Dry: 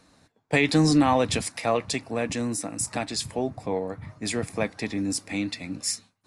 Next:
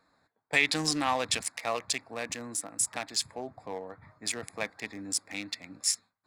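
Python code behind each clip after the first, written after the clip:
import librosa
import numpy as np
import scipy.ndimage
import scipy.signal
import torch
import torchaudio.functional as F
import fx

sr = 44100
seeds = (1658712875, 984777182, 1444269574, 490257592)

y = fx.wiener(x, sr, points=15)
y = fx.tilt_shelf(y, sr, db=-9.5, hz=710.0)
y = F.gain(torch.from_numpy(y), -7.0).numpy()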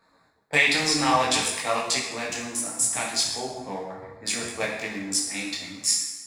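y = fx.rev_plate(x, sr, seeds[0], rt60_s=1.1, hf_ratio=0.85, predelay_ms=0, drr_db=-0.5)
y = fx.detune_double(y, sr, cents=21)
y = F.gain(torch.from_numpy(y), 7.5).numpy()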